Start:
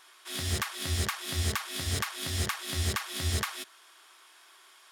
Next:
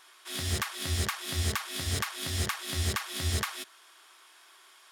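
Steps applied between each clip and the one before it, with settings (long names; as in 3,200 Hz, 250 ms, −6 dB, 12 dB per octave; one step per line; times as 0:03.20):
no processing that can be heard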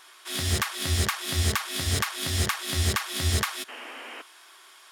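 sound drawn into the spectrogram noise, 0:03.68–0:04.22, 230–3,200 Hz −46 dBFS
level +5 dB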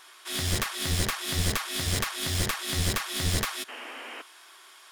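wavefolder on the positive side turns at −25 dBFS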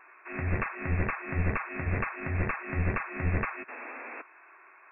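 linear-phase brick-wall low-pass 2,700 Hz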